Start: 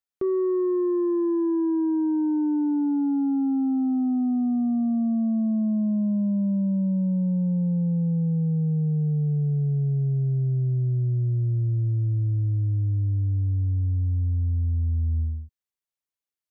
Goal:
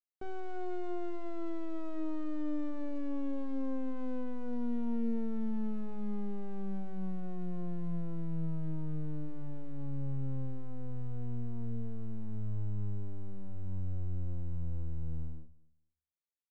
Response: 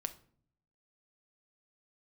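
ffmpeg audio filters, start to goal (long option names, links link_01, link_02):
-filter_complex "[0:a]lowpass=frequency=1000:poles=1,aresample=16000,aeval=exprs='clip(val(0),-1,0.00596)':channel_layout=same,aresample=44100,aecho=1:1:232|464:0.0708|0.0156[link_01];[1:a]atrim=start_sample=2205,afade=type=out:start_time=0.42:duration=0.01,atrim=end_sample=18963,asetrate=66150,aresample=44100[link_02];[link_01][link_02]afir=irnorm=-1:irlink=0,volume=-6.5dB"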